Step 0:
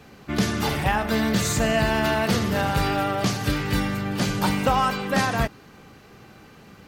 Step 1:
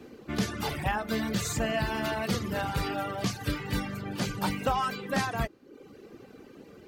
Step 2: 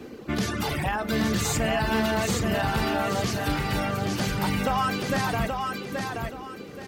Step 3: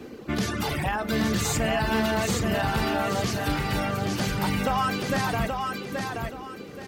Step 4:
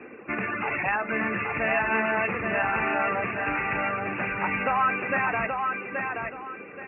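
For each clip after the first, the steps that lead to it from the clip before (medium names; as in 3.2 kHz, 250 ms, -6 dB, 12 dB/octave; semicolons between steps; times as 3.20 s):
band noise 200–500 Hz -43 dBFS; reverb removal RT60 0.81 s; trim -6 dB
peak limiter -25 dBFS, peak gain reduction 7.5 dB; on a send: feedback delay 827 ms, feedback 29%, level -4.5 dB; on the sum: trim +7 dB
no audible change
Chebyshev low-pass 2.7 kHz, order 10; tilt EQ +4 dB/octave; de-hum 74 Hz, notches 2; trim +2.5 dB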